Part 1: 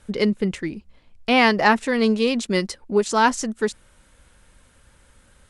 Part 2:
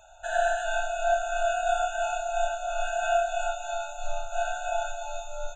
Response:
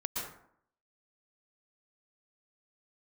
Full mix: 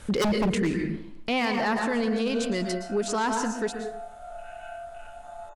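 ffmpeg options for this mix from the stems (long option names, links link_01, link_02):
-filter_complex "[0:a]acontrast=63,volume=-1.5dB,afade=type=out:start_time=0.69:duration=0.78:silence=0.251189,asplit=2[link_01][link_02];[link_02]volume=-5dB[link_03];[1:a]afwtdn=0.0224,acompressor=threshold=-33dB:ratio=6,adelay=1600,volume=-5.5dB,asplit=2[link_04][link_05];[link_05]volume=-5dB[link_06];[2:a]atrim=start_sample=2205[link_07];[link_03][link_07]afir=irnorm=-1:irlink=0[link_08];[link_06]aecho=0:1:95:1[link_09];[link_01][link_04][link_08][link_09]amix=inputs=4:normalize=0,aeval=exprs='0.299*(abs(mod(val(0)/0.299+3,4)-2)-1)':channel_layout=same,alimiter=limit=-18.5dB:level=0:latency=1:release=20"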